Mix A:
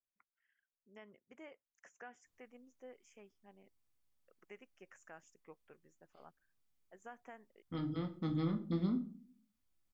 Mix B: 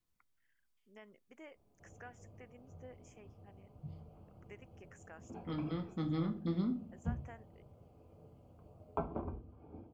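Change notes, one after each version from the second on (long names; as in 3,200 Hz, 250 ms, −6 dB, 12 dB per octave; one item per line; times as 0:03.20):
first voice: remove low-pass filter 6,800 Hz
second voice: entry −2.25 s
background: unmuted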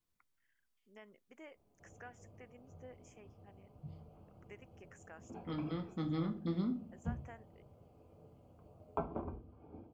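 master: add low-shelf EQ 140 Hz −3.5 dB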